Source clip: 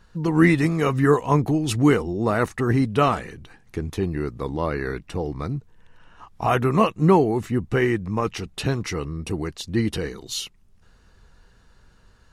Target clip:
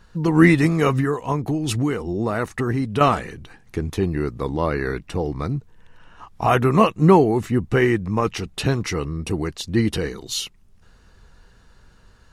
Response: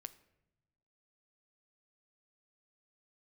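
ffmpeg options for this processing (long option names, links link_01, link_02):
-filter_complex "[0:a]asettb=1/sr,asplit=3[link_01][link_02][link_03];[link_01]atrim=end=1.004[link_04];[link_02]atrim=start=1:end=3.01,asetpts=PTS-STARTPTS,afade=type=in:duration=0.004:curve=qsin,afade=type=out:start_time=2.006:duration=0.004:curve=qsin,acompressor=threshold=-22dB:ratio=6[link_05];[link_03]atrim=start=3.006[link_06];[link_04][link_05]acrossfade=duration=0.004:curve1=hsin:curve2=qsin[link_07];[link_07][link_06]acrossfade=duration=0.004:curve1=qsin:curve2=hsin,volume=3dB"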